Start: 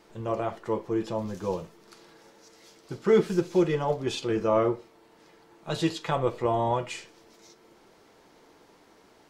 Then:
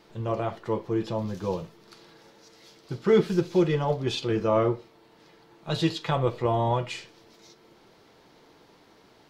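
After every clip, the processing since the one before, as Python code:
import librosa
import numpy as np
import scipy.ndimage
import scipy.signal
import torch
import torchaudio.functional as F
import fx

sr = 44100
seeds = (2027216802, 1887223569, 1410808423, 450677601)

y = fx.graphic_eq(x, sr, hz=(125, 4000, 8000), db=(6, 5, -5))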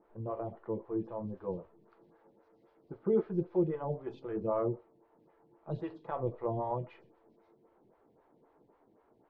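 y = scipy.signal.sosfilt(scipy.signal.butter(2, 1100.0, 'lowpass', fs=sr, output='sos'), x)
y = fx.stagger_phaser(y, sr, hz=3.8)
y = F.gain(torch.from_numpy(y), -6.5).numpy()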